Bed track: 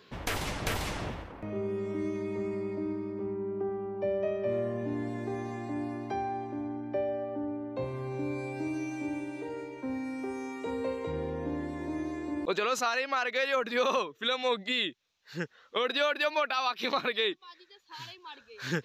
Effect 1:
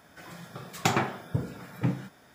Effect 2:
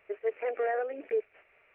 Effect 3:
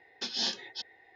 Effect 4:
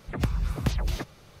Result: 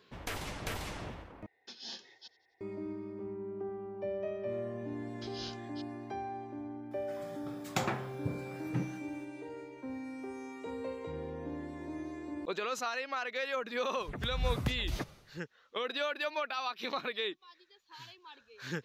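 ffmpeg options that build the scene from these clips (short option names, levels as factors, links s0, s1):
-filter_complex "[3:a]asplit=2[s0][s1];[0:a]volume=0.473[s2];[s0]asplit=5[s3][s4][s5][s6][s7];[s4]adelay=89,afreqshift=67,volume=0.0891[s8];[s5]adelay=178,afreqshift=134,volume=0.0479[s9];[s6]adelay=267,afreqshift=201,volume=0.026[s10];[s7]adelay=356,afreqshift=268,volume=0.014[s11];[s3][s8][s9][s10][s11]amix=inputs=5:normalize=0[s12];[s1]afreqshift=-180[s13];[4:a]tremolo=f=1.9:d=0.72[s14];[s2]asplit=2[s15][s16];[s15]atrim=end=1.464[s17];[s12]atrim=end=1.15,asetpts=PTS-STARTPTS,volume=0.211[s18];[s16]atrim=start=2.606[s19];[s13]atrim=end=1.15,asetpts=PTS-STARTPTS,volume=0.211,afade=t=in:d=0.004:c=hsin,afade=t=out:st=1.146:d=0.004:c=hsin,adelay=5000[s20];[1:a]atrim=end=2.34,asetpts=PTS-STARTPTS,volume=0.398,afade=t=in:d=0.004:c=hsin,afade=t=out:st=2.336:d=0.004:c=hsin,adelay=6910[s21];[s14]atrim=end=1.4,asetpts=PTS-STARTPTS,volume=0.75,afade=t=in:d=0.004:c=hsin,afade=t=out:st=1.396:d=0.004:c=hsin,adelay=14000[s22];[s17][s18]acrossfade=d=0.004:c1=hsin:c2=hsin[s23];[s23][s19]acrossfade=d=0.004:c1=hsin:c2=hsin[s24];[s24][s20][s21][s22]amix=inputs=4:normalize=0"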